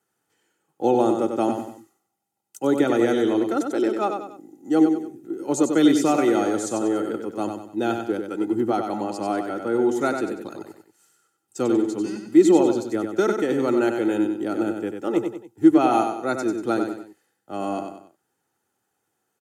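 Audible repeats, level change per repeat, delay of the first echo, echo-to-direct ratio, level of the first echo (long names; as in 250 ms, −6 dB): 3, −8.0 dB, 95 ms, −5.5 dB, −6.0 dB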